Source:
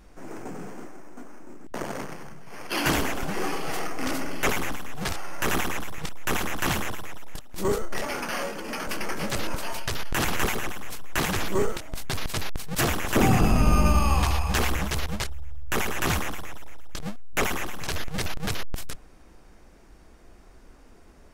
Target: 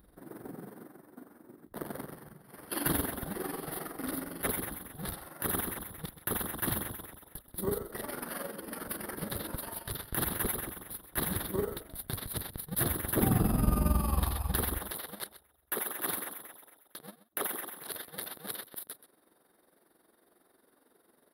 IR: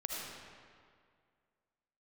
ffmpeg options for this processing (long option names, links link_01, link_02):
-af "asetnsamples=nb_out_samples=441:pad=0,asendcmd='14.78 highpass f 360',highpass=46,tremolo=f=22:d=0.667,firequalizer=gain_entry='entry(290,0);entry(770,-5);entry(1800,-4);entry(2500,-15);entry(3700,0);entry(6900,-26);entry(10000,10)':delay=0.05:min_phase=1,aecho=1:1:128:0.178,volume=-3dB"